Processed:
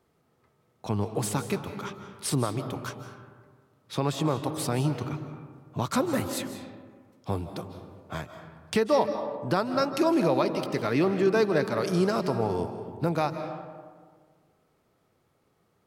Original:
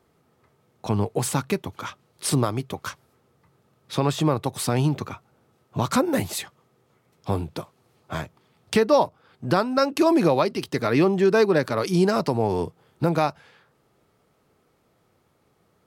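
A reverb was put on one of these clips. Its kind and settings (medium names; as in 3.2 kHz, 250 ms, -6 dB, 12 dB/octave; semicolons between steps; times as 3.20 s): algorithmic reverb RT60 1.7 s, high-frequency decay 0.4×, pre-delay 120 ms, DRR 8 dB; trim -5 dB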